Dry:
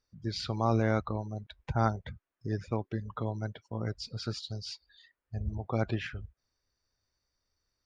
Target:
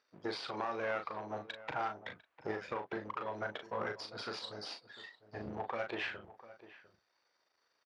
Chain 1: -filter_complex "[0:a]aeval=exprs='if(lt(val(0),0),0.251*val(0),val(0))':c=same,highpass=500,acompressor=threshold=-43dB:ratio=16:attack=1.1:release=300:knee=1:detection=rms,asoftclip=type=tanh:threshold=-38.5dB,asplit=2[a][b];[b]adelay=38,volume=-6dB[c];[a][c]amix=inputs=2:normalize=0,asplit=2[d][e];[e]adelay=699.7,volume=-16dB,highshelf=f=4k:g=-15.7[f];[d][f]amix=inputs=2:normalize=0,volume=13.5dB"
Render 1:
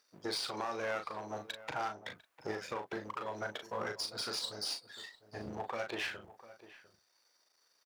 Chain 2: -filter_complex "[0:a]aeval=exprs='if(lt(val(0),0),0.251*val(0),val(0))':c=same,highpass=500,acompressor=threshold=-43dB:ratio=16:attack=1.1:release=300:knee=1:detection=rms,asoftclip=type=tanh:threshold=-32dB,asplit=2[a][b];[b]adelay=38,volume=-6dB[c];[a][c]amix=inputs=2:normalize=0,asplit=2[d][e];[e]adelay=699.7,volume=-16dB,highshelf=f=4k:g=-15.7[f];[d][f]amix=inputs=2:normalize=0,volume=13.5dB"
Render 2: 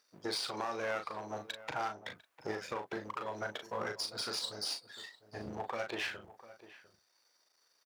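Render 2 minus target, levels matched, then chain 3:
4000 Hz band +5.0 dB
-filter_complex "[0:a]aeval=exprs='if(lt(val(0),0),0.251*val(0),val(0))':c=same,highpass=500,acompressor=threshold=-43dB:ratio=16:attack=1.1:release=300:knee=1:detection=rms,lowpass=3.1k,asoftclip=type=tanh:threshold=-32dB,asplit=2[a][b];[b]adelay=38,volume=-6dB[c];[a][c]amix=inputs=2:normalize=0,asplit=2[d][e];[e]adelay=699.7,volume=-16dB,highshelf=f=4k:g=-15.7[f];[d][f]amix=inputs=2:normalize=0,volume=13.5dB"

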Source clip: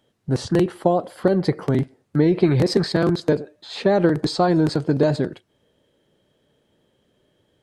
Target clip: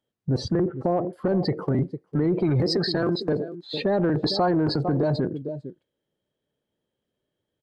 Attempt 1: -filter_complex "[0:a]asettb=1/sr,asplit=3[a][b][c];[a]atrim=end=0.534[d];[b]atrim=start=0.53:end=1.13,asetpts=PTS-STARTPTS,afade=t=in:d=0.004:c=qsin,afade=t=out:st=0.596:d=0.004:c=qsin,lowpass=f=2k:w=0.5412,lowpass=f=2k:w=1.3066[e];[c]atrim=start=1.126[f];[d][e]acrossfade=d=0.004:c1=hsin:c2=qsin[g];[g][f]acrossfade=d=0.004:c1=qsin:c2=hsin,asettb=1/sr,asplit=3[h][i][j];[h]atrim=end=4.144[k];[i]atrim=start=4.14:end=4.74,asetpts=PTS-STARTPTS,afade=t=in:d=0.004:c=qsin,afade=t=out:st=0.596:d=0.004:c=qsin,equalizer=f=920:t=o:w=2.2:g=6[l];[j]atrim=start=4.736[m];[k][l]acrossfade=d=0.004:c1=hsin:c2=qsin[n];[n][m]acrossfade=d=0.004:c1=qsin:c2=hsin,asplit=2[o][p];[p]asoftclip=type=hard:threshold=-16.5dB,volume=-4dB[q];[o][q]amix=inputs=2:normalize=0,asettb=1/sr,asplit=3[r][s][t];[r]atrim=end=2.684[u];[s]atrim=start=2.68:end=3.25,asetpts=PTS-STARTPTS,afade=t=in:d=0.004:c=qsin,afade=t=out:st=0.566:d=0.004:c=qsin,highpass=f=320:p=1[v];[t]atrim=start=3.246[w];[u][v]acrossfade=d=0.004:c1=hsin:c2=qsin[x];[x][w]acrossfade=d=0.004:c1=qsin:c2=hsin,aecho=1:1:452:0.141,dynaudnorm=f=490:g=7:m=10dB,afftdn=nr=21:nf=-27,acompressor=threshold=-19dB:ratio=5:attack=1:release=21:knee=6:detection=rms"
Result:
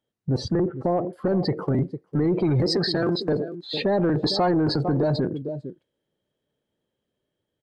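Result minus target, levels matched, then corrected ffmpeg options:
hard clip: distortion +27 dB
-filter_complex "[0:a]asettb=1/sr,asplit=3[a][b][c];[a]atrim=end=0.534[d];[b]atrim=start=0.53:end=1.13,asetpts=PTS-STARTPTS,afade=t=in:d=0.004:c=qsin,afade=t=out:st=0.596:d=0.004:c=qsin,lowpass=f=2k:w=0.5412,lowpass=f=2k:w=1.3066[e];[c]atrim=start=1.126[f];[d][e]acrossfade=d=0.004:c1=hsin:c2=qsin[g];[g][f]acrossfade=d=0.004:c1=qsin:c2=hsin,asettb=1/sr,asplit=3[h][i][j];[h]atrim=end=4.144[k];[i]atrim=start=4.14:end=4.74,asetpts=PTS-STARTPTS,afade=t=in:d=0.004:c=qsin,afade=t=out:st=0.596:d=0.004:c=qsin,equalizer=f=920:t=o:w=2.2:g=6[l];[j]atrim=start=4.736[m];[k][l]acrossfade=d=0.004:c1=hsin:c2=qsin[n];[n][m]acrossfade=d=0.004:c1=qsin:c2=hsin,asplit=2[o][p];[p]asoftclip=type=hard:threshold=-6dB,volume=-4dB[q];[o][q]amix=inputs=2:normalize=0,asettb=1/sr,asplit=3[r][s][t];[r]atrim=end=2.684[u];[s]atrim=start=2.68:end=3.25,asetpts=PTS-STARTPTS,afade=t=in:d=0.004:c=qsin,afade=t=out:st=0.566:d=0.004:c=qsin,highpass=f=320:p=1[v];[t]atrim=start=3.246[w];[u][v]acrossfade=d=0.004:c1=hsin:c2=qsin[x];[x][w]acrossfade=d=0.004:c1=qsin:c2=hsin,aecho=1:1:452:0.141,dynaudnorm=f=490:g=7:m=10dB,afftdn=nr=21:nf=-27,acompressor=threshold=-19dB:ratio=5:attack=1:release=21:knee=6:detection=rms"

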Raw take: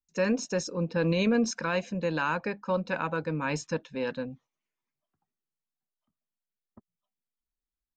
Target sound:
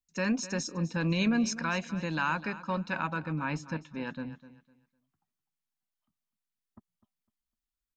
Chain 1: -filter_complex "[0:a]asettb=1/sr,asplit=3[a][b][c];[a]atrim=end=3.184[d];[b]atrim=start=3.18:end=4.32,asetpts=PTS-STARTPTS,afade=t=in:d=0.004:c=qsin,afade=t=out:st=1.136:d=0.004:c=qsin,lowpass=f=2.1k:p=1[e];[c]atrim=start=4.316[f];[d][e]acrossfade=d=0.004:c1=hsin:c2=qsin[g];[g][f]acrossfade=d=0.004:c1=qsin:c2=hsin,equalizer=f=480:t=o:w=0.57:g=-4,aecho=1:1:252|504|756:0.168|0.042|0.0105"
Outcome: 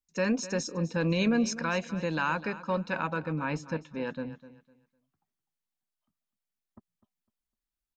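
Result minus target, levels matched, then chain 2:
500 Hz band +5.0 dB
-filter_complex "[0:a]asettb=1/sr,asplit=3[a][b][c];[a]atrim=end=3.184[d];[b]atrim=start=3.18:end=4.32,asetpts=PTS-STARTPTS,afade=t=in:d=0.004:c=qsin,afade=t=out:st=1.136:d=0.004:c=qsin,lowpass=f=2.1k:p=1[e];[c]atrim=start=4.316[f];[d][e]acrossfade=d=0.004:c1=hsin:c2=qsin[g];[g][f]acrossfade=d=0.004:c1=qsin:c2=hsin,equalizer=f=480:t=o:w=0.57:g=-12.5,aecho=1:1:252|504|756:0.168|0.042|0.0105"

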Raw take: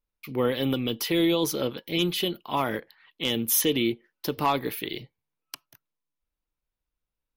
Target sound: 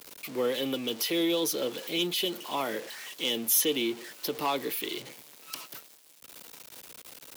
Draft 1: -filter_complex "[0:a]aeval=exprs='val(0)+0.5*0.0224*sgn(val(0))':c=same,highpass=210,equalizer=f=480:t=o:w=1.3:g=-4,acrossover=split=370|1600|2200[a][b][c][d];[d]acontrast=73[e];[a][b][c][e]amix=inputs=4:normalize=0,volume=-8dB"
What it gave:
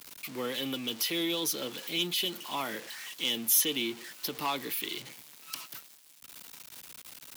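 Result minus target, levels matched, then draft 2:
500 Hz band -6.0 dB
-filter_complex "[0:a]aeval=exprs='val(0)+0.5*0.0224*sgn(val(0))':c=same,highpass=210,equalizer=f=480:t=o:w=1.3:g=4.5,acrossover=split=370|1600|2200[a][b][c][d];[d]acontrast=73[e];[a][b][c][e]amix=inputs=4:normalize=0,volume=-8dB"

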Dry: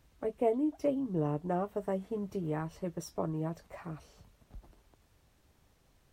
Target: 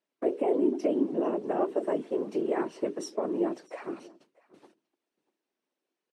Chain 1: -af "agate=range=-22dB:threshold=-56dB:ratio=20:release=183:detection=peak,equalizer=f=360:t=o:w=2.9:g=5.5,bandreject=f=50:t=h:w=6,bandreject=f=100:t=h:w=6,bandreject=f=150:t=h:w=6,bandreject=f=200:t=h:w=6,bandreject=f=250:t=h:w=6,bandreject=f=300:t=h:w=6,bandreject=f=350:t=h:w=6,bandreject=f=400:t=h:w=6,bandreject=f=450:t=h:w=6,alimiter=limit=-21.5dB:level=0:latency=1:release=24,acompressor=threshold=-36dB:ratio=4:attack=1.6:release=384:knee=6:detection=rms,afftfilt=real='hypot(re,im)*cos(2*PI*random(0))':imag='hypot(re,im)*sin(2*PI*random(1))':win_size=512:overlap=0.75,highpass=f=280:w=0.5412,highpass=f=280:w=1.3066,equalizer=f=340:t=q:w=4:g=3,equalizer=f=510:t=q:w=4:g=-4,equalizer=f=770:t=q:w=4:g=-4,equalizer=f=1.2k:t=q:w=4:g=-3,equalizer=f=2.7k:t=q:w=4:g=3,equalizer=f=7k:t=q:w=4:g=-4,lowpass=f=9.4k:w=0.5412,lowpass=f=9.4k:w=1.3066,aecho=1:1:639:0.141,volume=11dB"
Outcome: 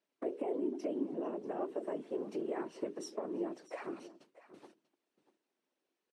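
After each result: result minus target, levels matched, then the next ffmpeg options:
compressor: peak gain reduction +10.5 dB; echo-to-direct +7 dB
-af "agate=range=-22dB:threshold=-56dB:ratio=20:release=183:detection=peak,equalizer=f=360:t=o:w=2.9:g=5.5,bandreject=f=50:t=h:w=6,bandreject=f=100:t=h:w=6,bandreject=f=150:t=h:w=6,bandreject=f=200:t=h:w=6,bandreject=f=250:t=h:w=6,bandreject=f=300:t=h:w=6,bandreject=f=350:t=h:w=6,bandreject=f=400:t=h:w=6,bandreject=f=450:t=h:w=6,alimiter=limit=-21.5dB:level=0:latency=1:release=24,afftfilt=real='hypot(re,im)*cos(2*PI*random(0))':imag='hypot(re,im)*sin(2*PI*random(1))':win_size=512:overlap=0.75,highpass=f=280:w=0.5412,highpass=f=280:w=1.3066,equalizer=f=340:t=q:w=4:g=3,equalizer=f=510:t=q:w=4:g=-4,equalizer=f=770:t=q:w=4:g=-4,equalizer=f=1.2k:t=q:w=4:g=-3,equalizer=f=2.7k:t=q:w=4:g=3,equalizer=f=7k:t=q:w=4:g=-4,lowpass=f=9.4k:w=0.5412,lowpass=f=9.4k:w=1.3066,aecho=1:1:639:0.141,volume=11dB"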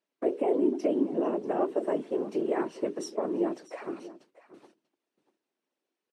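echo-to-direct +7 dB
-af "agate=range=-22dB:threshold=-56dB:ratio=20:release=183:detection=peak,equalizer=f=360:t=o:w=2.9:g=5.5,bandreject=f=50:t=h:w=6,bandreject=f=100:t=h:w=6,bandreject=f=150:t=h:w=6,bandreject=f=200:t=h:w=6,bandreject=f=250:t=h:w=6,bandreject=f=300:t=h:w=6,bandreject=f=350:t=h:w=6,bandreject=f=400:t=h:w=6,bandreject=f=450:t=h:w=6,alimiter=limit=-21.5dB:level=0:latency=1:release=24,afftfilt=real='hypot(re,im)*cos(2*PI*random(0))':imag='hypot(re,im)*sin(2*PI*random(1))':win_size=512:overlap=0.75,highpass=f=280:w=0.5412,highpass=f=280:w=1.3066,equalizer=f=340:t=q:w=4:g=3,equalizer=f=510:t=q:w=4:g=-4,equalizer=f=770:t=q:w=4:g=-4,equalizer=f=1.2k:t=q:w=4:g=-3,equalizer=f=2.7k:t=q:w=4:g=3,equalizer=f=7k:t=q:w=4:g=-4,lowpass=f=9.4k:w=0.5412,lowpass=f=9.4k:w=1.3066,aecho=1:1:639:0.0631,volume=11dB"

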